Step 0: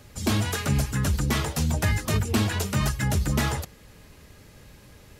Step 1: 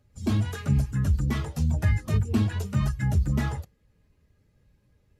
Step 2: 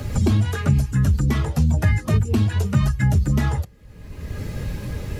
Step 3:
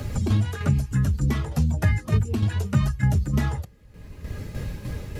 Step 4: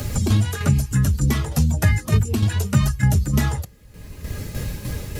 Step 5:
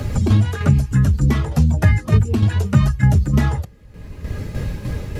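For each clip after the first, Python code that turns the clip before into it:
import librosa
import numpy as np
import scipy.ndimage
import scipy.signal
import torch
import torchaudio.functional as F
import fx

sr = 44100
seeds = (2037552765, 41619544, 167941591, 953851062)

y1 = fx.spectral_expand(x, sr, expansion=1.5)
y2 = fx.band_squash(y1, sr, depth_pct=100)
y2 = y2 * 10.0 ** (6.0 / 20.0)
y3 = fx.tremolo_shape(y2, sr, shape='saw_down', hz=3.3, depth_pct=55)
y3 = y3 * 10.0 ** (-1.5 / 20.0)
y4 = fx.high_shelf(y3, sr, hz=4700.0, db=11.5)
y4 = y4 * 10.0 ** (3.5 / 20.0)
y5 = fx.lowpass(y4, sr, hz=2000.0, slope=6)
y5 = y5 * 10.0 ** (3.5 / 20.0)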